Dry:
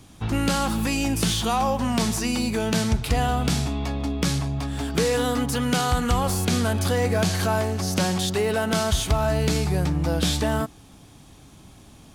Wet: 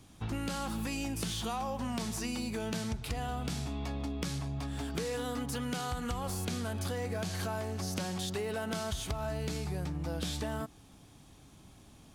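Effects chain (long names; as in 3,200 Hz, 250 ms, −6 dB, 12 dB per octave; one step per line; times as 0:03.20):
downward compressor, threshold −24 dBFS, peak gain reduction 8.5 dB
level −8 dB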